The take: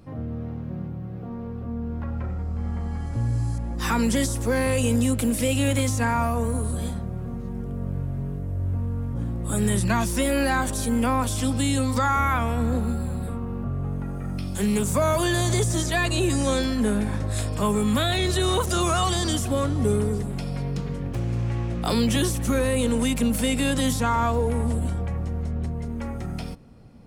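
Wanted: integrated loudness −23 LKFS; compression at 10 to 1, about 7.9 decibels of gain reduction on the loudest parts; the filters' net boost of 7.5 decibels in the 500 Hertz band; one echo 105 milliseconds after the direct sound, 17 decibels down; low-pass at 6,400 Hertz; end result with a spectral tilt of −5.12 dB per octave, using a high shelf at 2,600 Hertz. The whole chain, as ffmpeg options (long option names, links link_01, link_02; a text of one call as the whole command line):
ffmpeg -i in.wav -af "lowpass=6400,equalizer=frequency=500:width_type=o:gain=8.5,highshelf=frequency=2600:gain=8,acompressor=threshold=-21dB:ratio=10,aecho=1:1:105:0.141,volume=3.5dB" out.wav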